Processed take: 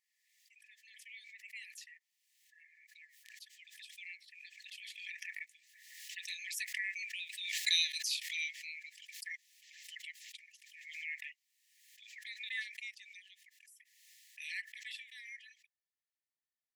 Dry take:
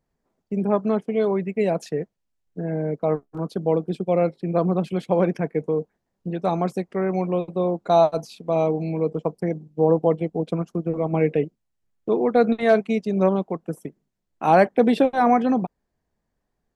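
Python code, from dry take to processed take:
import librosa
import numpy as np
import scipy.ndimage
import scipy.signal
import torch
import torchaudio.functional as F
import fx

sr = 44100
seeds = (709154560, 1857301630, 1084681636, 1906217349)

y = fx.doppler_pass(x, sr, speed_mps=9, closest_m=6.1, pass_at_s=7.7)
y = fx.brickwall_highpass(y, sr, low_hz=1700.0)
y = fx.pre_swell(y, sr, db_per_s=45.0)
y = y * librosa.db_to_amplitude(9.5)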